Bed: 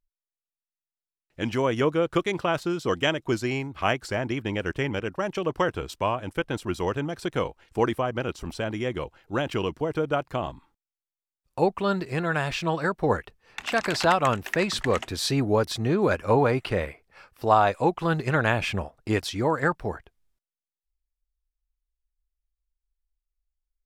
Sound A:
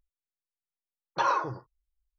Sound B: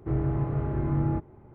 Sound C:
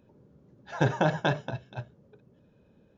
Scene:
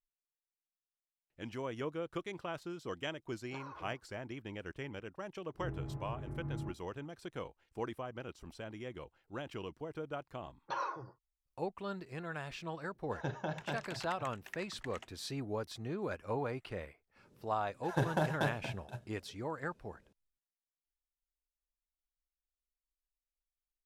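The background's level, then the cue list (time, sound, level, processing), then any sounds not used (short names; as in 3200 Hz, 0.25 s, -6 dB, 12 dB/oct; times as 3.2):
bed -16 dB
2.36 add A -9.5 dB + compressor 8:1, threshold -37 dBFS
5.53 add B -17 dB, fades 0.02 s + bell 160 Hz +3.5 dB
9.52 add A -12 dB
12.43 add C -14 dB
17.16 add C -7.5 dB + CVSD 64 kbps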